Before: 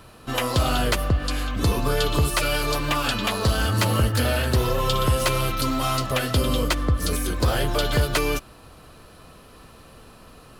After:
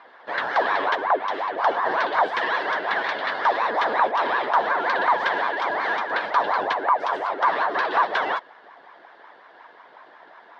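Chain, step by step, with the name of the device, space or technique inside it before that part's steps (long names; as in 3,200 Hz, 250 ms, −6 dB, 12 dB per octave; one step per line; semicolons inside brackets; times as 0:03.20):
voice changer toy (ring modulator whose carrier an LFO sweeps 710 Hz, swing 55%, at 5.5 Hz; loudspeaker in its box 440–3,600 Hz, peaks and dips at 690 Hz +4 dB, 980 Hz +4 dB, 1,700 Hz +9 dB, 2,500 Hz −7 dB)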